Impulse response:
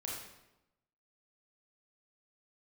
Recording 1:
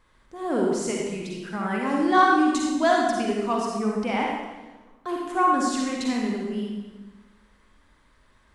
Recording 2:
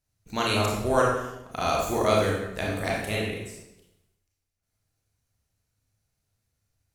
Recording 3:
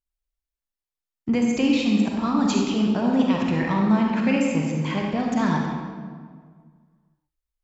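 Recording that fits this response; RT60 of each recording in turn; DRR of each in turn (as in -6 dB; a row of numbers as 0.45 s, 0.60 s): 2; 1.2 s, 0.95 s, 1.8 s; -2.0 dB, -4.0 dB, -1.0 dB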